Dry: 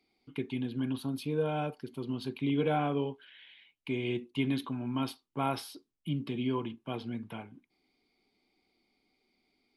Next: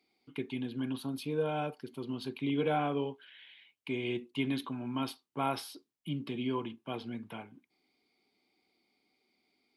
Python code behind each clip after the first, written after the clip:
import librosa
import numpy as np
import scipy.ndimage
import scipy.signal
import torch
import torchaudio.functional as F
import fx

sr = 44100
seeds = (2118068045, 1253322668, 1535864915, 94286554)

y = scipy.signal.sosfilt(scipy.signal.butter(2, 73.0, 'highpass', fs=sr, output='sos'), x)
y = fx.low_shelf(y, sr, hz=200.0, db=-6.0)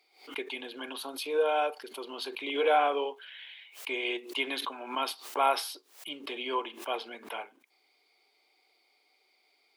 y = scipy.signal.sosfilt(scipy.signal.butter(4, 460.0, 'highpass', fs=sr, output='sos'), x)
y = fx.pre_swell(y, sr, db_per_s=130.0)
y = F.gain(torch.from_numpy(y), 8.0).numpy()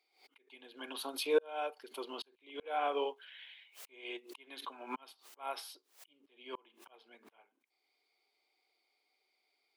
y = fx.auto_swell(x, sr, attack_ms=623.0)
y = fx.upward_expand(y, sr, threshold_db=-55.0, expansion=1.5)
y = F.gain(torch.from_numpy(y), 4.0).numpy()